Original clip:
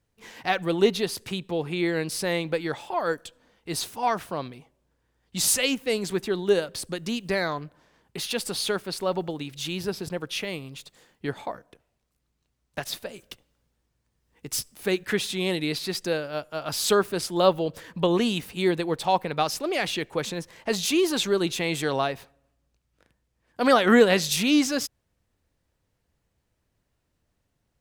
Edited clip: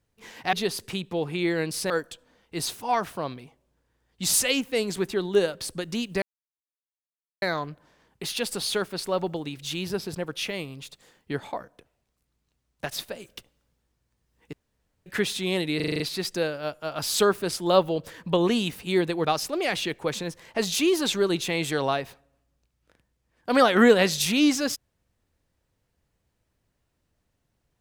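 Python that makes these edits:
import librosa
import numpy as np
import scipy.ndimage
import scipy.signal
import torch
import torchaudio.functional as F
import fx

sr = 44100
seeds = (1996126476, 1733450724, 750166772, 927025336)

y = fx.edit(x, sr, fx.cut(start_s=0.53, length_s=0.38),
    fx.cut(start_s=2.28, length_s=0.76),
    fx.insert_silence(at_s=7.36, length_s=1.2),
    fx.room_tone_fill(start_s=14.47, length_s=0.53),
    fx.stutter(start_s=15.7, slice_s=0.04, count=7),
    fx.cut(start_s=18.95, length_s=0.41), tone=tone)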